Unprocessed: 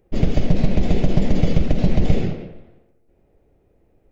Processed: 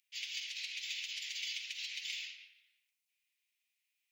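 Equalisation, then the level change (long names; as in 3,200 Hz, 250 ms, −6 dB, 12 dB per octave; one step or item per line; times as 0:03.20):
Butterworth high-pass 2,400 Hz 36 dB per octave
+1.0 dB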